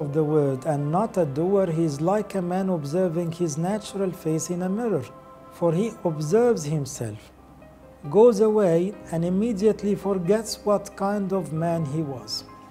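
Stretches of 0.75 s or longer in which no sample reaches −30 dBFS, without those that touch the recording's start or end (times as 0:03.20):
0:07.15–0:08.05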